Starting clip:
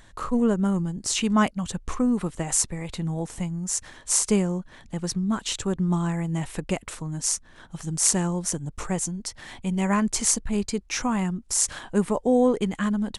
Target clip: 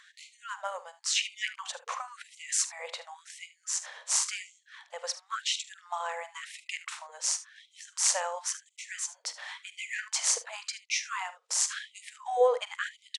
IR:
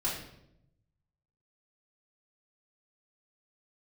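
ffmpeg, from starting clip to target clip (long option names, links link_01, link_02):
-af "highpass=340,lowpass=5900,aecho=1:1:45|75:0.158|0.158,afftfilt=real='re*gte(b*sr/1024,430*pow(2000/430,0.5+0.5*sin(2*PI*0.94*pts/sr)))':imag='im*gte(b*sr/1024,430*pow(2000/430,0.5+0.5*sin(2*PI*0.94*pts/sr)))':win_size=1024:overlap=0.75,volume=1dB"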